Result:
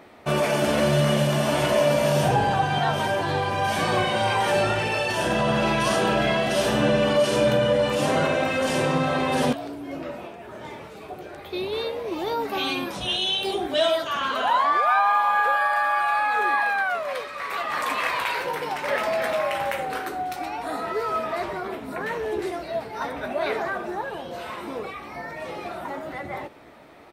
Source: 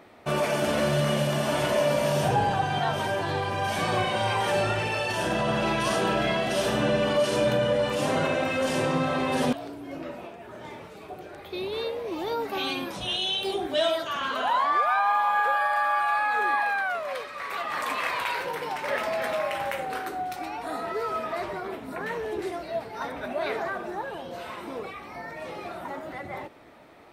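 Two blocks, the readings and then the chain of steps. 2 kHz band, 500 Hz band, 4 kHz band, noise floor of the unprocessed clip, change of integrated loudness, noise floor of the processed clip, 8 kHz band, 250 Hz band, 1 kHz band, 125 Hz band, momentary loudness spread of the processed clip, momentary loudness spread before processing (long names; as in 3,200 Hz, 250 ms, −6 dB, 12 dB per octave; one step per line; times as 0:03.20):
+3.0 dB, +3.5 dB, +3.0 dB, −43 dBFS, +3.0 dB, −40 dBFS, +3.0 dB, +3.5 dB, +3.0 dB, +4.0 dB, 14 LU, 14 LU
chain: double-tracking delay 14 ms −13 dB
level +3 dB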